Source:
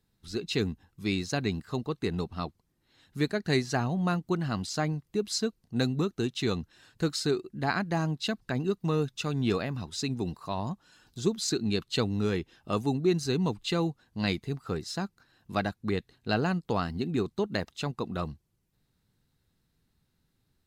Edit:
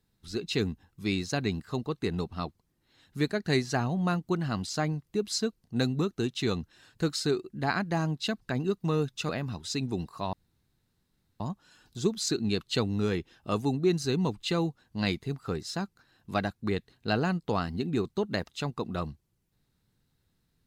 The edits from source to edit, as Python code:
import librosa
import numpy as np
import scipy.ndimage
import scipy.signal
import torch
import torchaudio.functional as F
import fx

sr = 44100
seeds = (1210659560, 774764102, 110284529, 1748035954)

y = fx.edit(x, sr, fx.cut(start_s=9.29, length_s=0.28),
    fx.insert_room_tone(at_s=10.61, length_s=1.07), tone=tone)